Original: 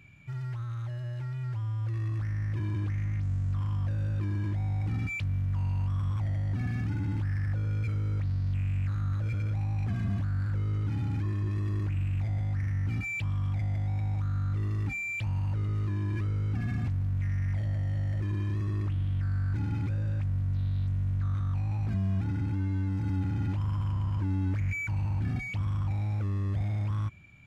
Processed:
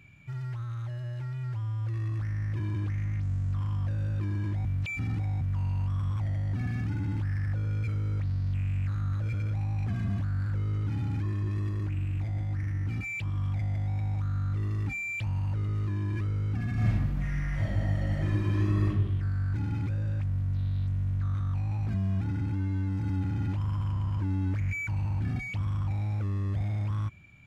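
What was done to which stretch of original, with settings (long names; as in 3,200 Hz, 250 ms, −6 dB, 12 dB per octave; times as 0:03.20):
0:04.65–0:05.41: reverse
0:11.69–0:13.37: amplitude modulation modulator 210 Hz, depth 15%
0:16.73–0:18.87: thrown reverb, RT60 0.96 s, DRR −6.5 dB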